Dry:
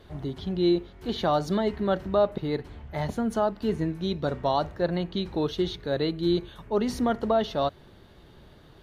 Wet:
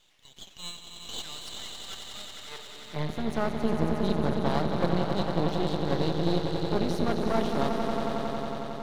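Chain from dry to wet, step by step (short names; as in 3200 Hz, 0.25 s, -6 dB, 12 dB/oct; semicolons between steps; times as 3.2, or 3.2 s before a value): high-pass sweep 2900 Hz -> 140 Hz, 2.28–2.99; swelling echo 91 ms, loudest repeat 5, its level -8 dB; half-wave rectifier; gain -2.5 dB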